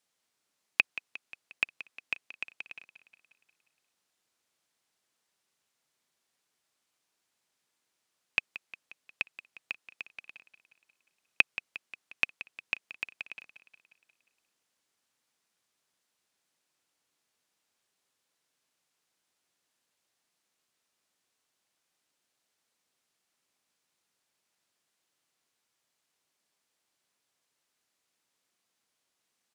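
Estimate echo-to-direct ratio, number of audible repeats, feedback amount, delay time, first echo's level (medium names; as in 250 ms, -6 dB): -12.5 dB, 5, 59%, 178 ms, -14.5 dB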